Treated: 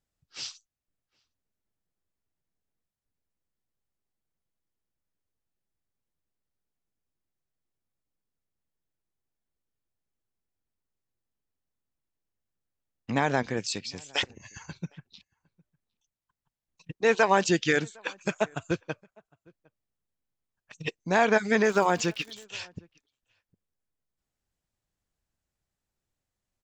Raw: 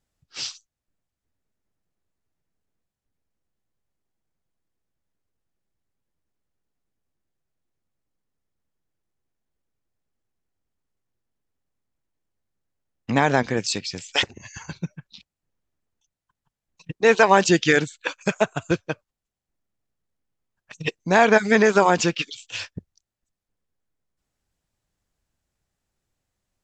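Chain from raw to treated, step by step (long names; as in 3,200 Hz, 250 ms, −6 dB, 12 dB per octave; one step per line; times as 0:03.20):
0:21.63–0:22.43: surface crackle 200 per second −31 dBFS
slap from a distant wall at 130 metres, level −28 dB
level −6.5 dB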